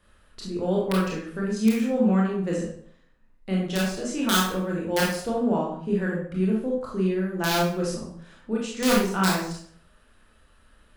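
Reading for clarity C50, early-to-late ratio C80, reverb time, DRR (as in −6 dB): 2.0 dB, 6.5 dB, 0.60 s, −4.0 dB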